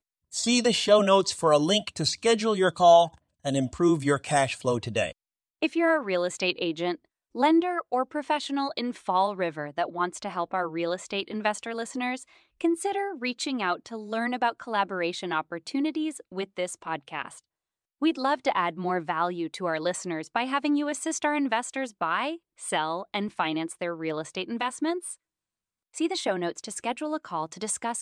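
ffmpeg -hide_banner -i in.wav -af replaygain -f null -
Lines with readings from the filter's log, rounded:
track_gain = +5.8 dB
track_peak = 0.294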